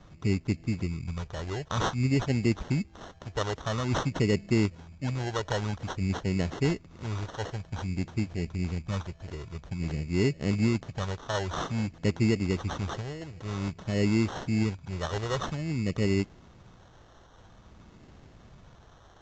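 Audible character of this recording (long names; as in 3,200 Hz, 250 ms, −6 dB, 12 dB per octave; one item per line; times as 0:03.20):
phaser sweep stages 2, 0.51 Hz, lowest notch 220–1,400 Hz
aliases and images of a low sample rate 2,400 Hz, jitter 0%
Ogg Vorbis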